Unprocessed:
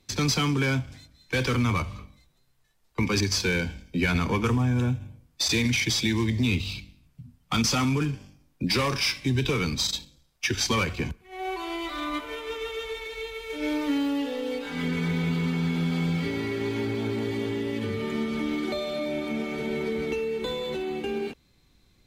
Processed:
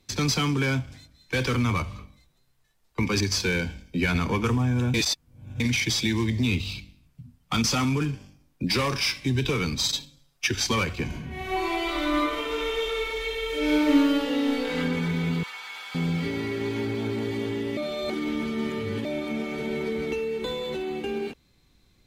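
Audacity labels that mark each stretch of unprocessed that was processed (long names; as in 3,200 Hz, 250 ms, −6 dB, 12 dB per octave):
4.940000	5.600000	reverse
9.830000	10.480000	comb filter 7.2 ms, depth 77%
11.060000	14.750000	thrown reverb, RT60 1.3 s, DRR −5.5 dB
15.430000	15.950000	high-pass filter 840 Hz 24 dB per octave
17.770000	19.050000	reverse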